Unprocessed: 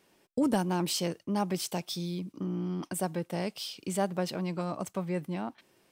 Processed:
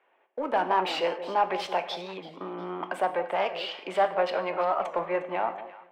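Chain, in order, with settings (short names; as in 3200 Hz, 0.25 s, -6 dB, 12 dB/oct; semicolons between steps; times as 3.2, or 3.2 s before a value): Wiener smoothing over 9 samples; HPF 330 Hz 12 dB/oct; in parallel at -8.5 dB: hard clip -31.5 dBFS, distortion -8 dB; on the sum: overdrive pedal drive 15 dB, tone 1800 Hz, clips at -14 dBFS; three-band isolator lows -17 dB, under 600 Hz, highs -24 dB, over 3100 Hz; on a send: echo with dull and thin repeats by turns 0.173 s, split 880 Hz, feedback 54%, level -10.5 dB; on the sum: non-linear reverb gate 0.2 s falling, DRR 8.5 dB; AGC gain up to 10 dB; bell 1400 Hz -6.5 dB 1.9 oct; record warp 45 rpm, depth 160 cents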